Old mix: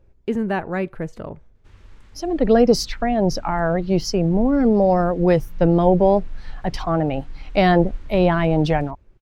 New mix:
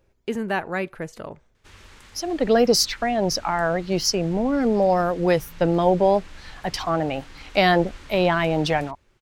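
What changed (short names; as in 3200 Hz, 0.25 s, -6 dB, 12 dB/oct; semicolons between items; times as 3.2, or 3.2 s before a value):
background +7.0 dB; master: add tilt +2.5 dB/oct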